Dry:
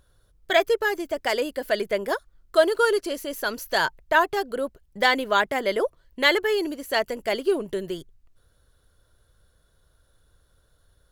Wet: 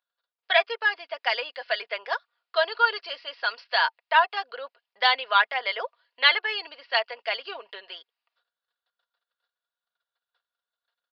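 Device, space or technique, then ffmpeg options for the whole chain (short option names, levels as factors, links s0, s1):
musical greeting card: -af "agate=range=0.0891:threshold=0.00141:ratio=16:detection=peak,aecho=1:1:4.2:0.45,aresample=11025,aresample=44100,highpass=f=720:w=0.5412,highpass=f=720:w=1.3066,equalizer=f=2700:t=o:w=0.38:g=5"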